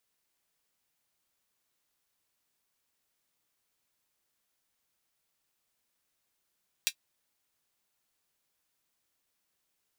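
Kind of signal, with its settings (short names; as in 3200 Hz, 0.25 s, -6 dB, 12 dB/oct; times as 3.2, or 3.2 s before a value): closed hi-hat, high-pass 2800 Hz, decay 0.08 s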